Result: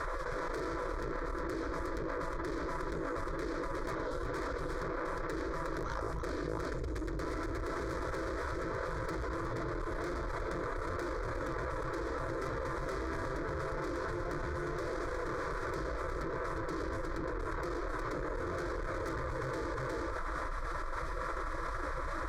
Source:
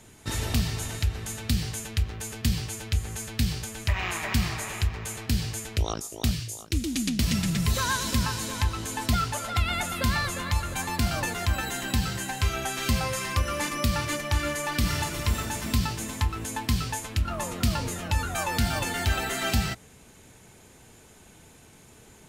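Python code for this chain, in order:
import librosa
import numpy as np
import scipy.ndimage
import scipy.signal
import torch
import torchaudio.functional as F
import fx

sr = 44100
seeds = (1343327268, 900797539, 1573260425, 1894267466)

p1 = fx.highpass(x, sr, hz=150.0, slope=6)
p2 = fx.spec_gate(p1, sr, threshold_db=-15, keep='weak')
p3 = scipy.signal.sosfilt(scipy.signal.butter(2, 1000.0, 'lowpass', fs=sr, output='sos'), p2)
p4 = fx.low_shelf(p3, sr, hz=200.0, db=11.5)
p5 = p4 + 0.31 * np.pad(p4, (int(6.0 * sr / 1000.0), 0))[:len(p4)]
p6 = fx.level_steps(p5, sr, step_db=9)
p7 = p5 + (p6 * 10.0 ** (2.0 / 20.0))
p8 = fx.tube_stage(p7, sr, drive_db=43.0, bias=0.7)
p9 = fx.fixed_phaser(p8, sr, hz=760.0, stages=6)
p10 = p9 + 10.0 ** (-11.5 / 20.0) * np.pad(p9, (int(360 * sr / 1000.0), 0))[:len(p9)]
p11 = fx.env_flatten(p10, sr, amount_pct=100)
y = p11 * 10.0 ** (8.0 / 20.0)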